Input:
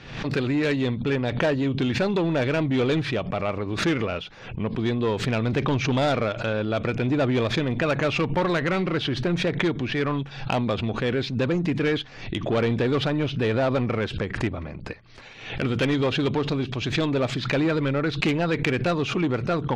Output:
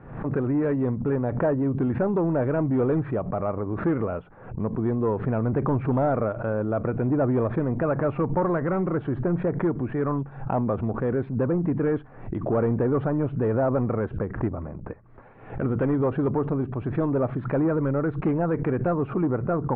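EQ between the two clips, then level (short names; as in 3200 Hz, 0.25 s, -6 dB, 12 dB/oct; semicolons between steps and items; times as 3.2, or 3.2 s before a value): LPF 1300 Hz 24 dB/oct; 0.0 dB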